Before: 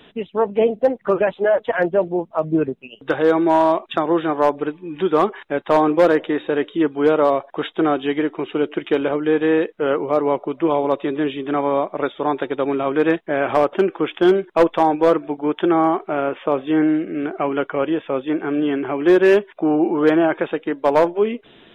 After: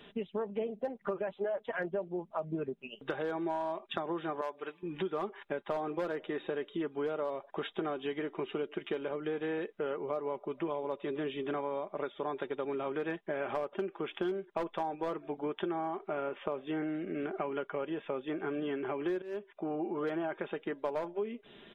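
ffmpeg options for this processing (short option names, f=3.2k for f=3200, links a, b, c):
-filter_complex "[0:a]asettb=1/sr,asplit=3[a][b][c];[a]atrim=end=4.414[d];[b]atrim=start=4.41:end=4.83,asetpts=PTS-STARTPTS,afade=t=in:d=0.004:c=qsin,afade=t=out:st=0.416:d=0.004:c=qsin,highpass=f=1.1k:p=1[e];[c]atrim=start=4.826[f];[d][e]acrossfade=d=0.004:c1=hsin:c2=qsin[g];[g][f]acrossfade=d=0.004:c1=qsin:c2=hsin,asplit=2[h][i];[h]atrim=end=19.22,asetpts=PTS-STARTPTS,afade=t=out:st=19.216:d=0.004:c=hsin:silence=0.112202[j];[i]atrim=start=19.22,asetpts=PTS-STARTPTS,afade=t=in:d=0.96:silence=0.112202[k];[j][k]concat=n=2:v=0:a=1,aecho=1:1:5:0.4,acompressor=threshold=-25dB:ratio=6,volume=-7.5dB"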